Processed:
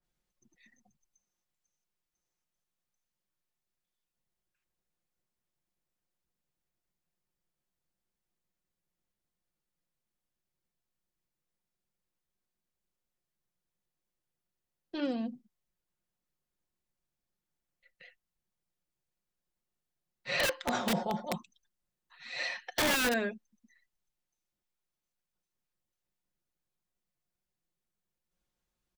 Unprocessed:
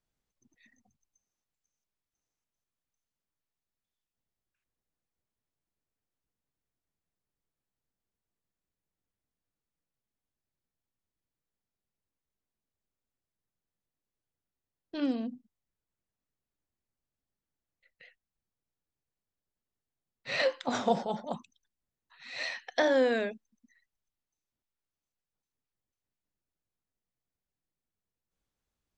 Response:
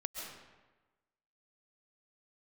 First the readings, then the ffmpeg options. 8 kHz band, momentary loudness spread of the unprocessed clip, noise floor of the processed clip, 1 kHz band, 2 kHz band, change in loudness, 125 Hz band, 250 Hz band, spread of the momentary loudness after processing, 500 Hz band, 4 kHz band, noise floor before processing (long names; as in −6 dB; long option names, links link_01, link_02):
+10.0 dB, 16 LU, below −85 dBFS, −1.5 dB, +2.0 dB, −1.5 dB, +3.5 dB, −1.5 dB, 15 LU, −6.0 dB, +3.5 dB, below −85 dBFS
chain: -filter_complex "[0:a]aecho=1:1:5.6:0.52,acrossover=split=360|2000[link_01][link_02][link_03];[link_02]aeval=exprs='(mod(15.8*val(0)+1,2)-1)/15.8':channel_layout=same[link_04];[link_01][link_04][link_03]amix=inputs=3:normalize=0,adynamicequalizer=threshold=0.00708:dfrequency=2700:dqfactor=0.7:tfrequency=2700:tqfactor=0.7:attack=5:release=100:ratio=0.375:range=3:mode=cutabove:tftype=highshelf"